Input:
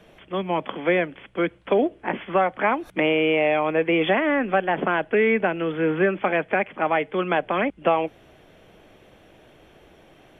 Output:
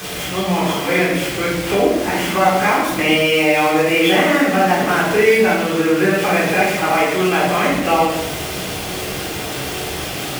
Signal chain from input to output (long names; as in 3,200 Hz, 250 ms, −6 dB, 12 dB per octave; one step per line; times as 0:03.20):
converter with a step at zero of −25.5 dBFS
high-pass filter 46 Hz
high-shelf EQ 2,600 Hz +9 dB
rectangular room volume 440 cubic metres, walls mixed, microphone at 3.8 metres
level −6.5 dB